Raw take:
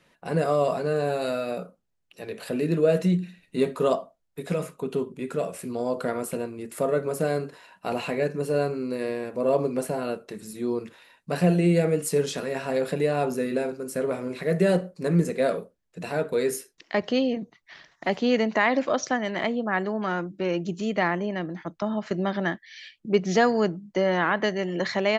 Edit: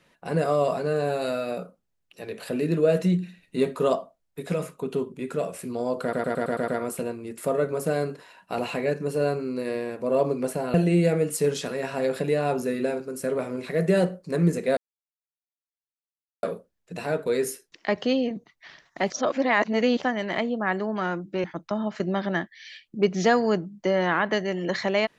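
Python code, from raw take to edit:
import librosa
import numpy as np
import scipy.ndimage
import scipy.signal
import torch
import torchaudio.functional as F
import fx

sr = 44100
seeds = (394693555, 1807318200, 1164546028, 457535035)

y = fx.edit(x, sr, fx.stutter(start_s=6.02, slice_s=0.11, count=7),
    fx.cut(start_s=10.08, length_s=1.38),
    fx.insert_silence(at_s=15.49, length_s=1.66),
    fx.reverse_span(start_s=18.16, length_s=0.93),
    fx.cut(start_s=20.5, length_s=1.05), tone=tone)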